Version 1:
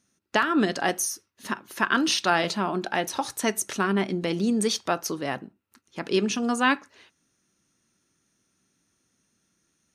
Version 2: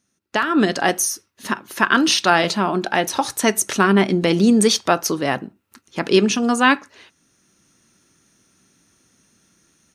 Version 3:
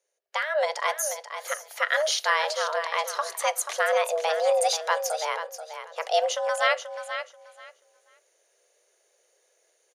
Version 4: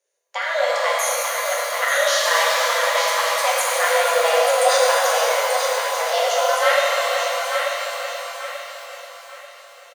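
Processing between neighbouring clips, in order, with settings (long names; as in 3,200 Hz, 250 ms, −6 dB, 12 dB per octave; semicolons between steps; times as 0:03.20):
automatic gain control gain up to 12 dB
on a send: repeating echo 484 ms, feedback 19%, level −9.5 dB; on the sum: frequency shifter +310 Hz; level −8.5 dB
on a send: repeating echo 887 ms, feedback 36%, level −6 dB; on the sum: reverb with rising layers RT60 2.7 s, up +12 semitones, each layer −8 dB, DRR −5 dB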